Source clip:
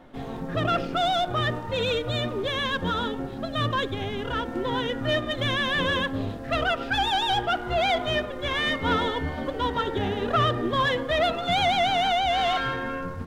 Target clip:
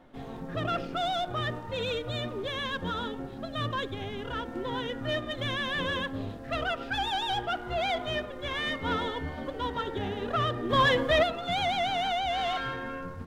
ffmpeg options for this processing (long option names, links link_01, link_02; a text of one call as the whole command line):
ffmpeg -i in.wav -filter_complex "[0:a]asplit=3[link_01][link_02][link_03];[link_01]afade=type=out:start_time=10.69:duration=0.02[link_04];[link_02]acontrast=88,afade=type=in:start_time=10.69:duration=0.02,afade=type=out:start_time=11.22:duration=0.02[link_05];[link_03]afade=type=in:start_time=11.22:duration=0.02[link_06];[link_04][link_05][link_06]amix=inputs=3:normalize=0,volume=-6dB" out.wav